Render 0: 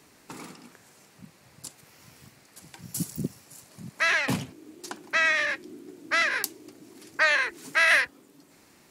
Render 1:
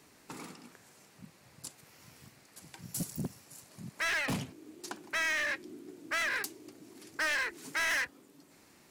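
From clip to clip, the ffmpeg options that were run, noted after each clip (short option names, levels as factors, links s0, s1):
-af "volume=18.8,asoftclip=hard,volume=0.0531,volume=0.668"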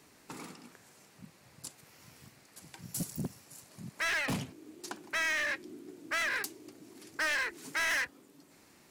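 -af anull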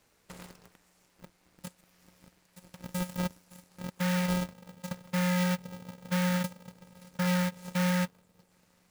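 -af "aeval=exprs='0.0376*(cos(1*acos(clip(val(0)/0.0376,-1,1)))-cos(1*PI/2))+0.0188*(cos(4*acos(clip(val(0)/0.0376,-1,1)))-cos(4*PI/2))+0.00335*(cos(8*acos(clip(val(0)/0.0376,-1,1)))-cos(8*PI/2))':c=same,asubboost=boost=4.5:cutoff=86,aeval=exprs='val(0)*sgn(sin(2*PI*180*n/s))':c=same,volume=0.398"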